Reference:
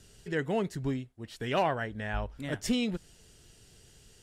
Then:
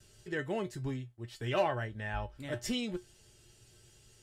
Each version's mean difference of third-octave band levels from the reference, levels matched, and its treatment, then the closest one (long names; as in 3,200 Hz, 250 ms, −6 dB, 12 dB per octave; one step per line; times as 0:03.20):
2.0 dB: noise gate with hold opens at −51 dBFS
parametric band 150 Hz −3.5 dB 0.4 octaves
tuned comb filter 120 Hz, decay 0.16 s, harmonics odd, mix 80%
level +5 dB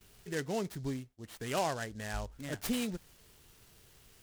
5.0 dB: high-shelf EQ 6,600 Hz +9.5 dB
noise gate with hold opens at −47 dBFS
short delay modulated by noise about 5,000 Hz, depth 0.044 ms
level −5 dB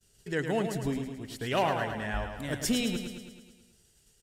7.5 dB: downward expander −48 dBFS
high-shelf EQ 7,500 Hz +11.5 dB
on a send: repeating echo 108 ms, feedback 59%, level −7 dB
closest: first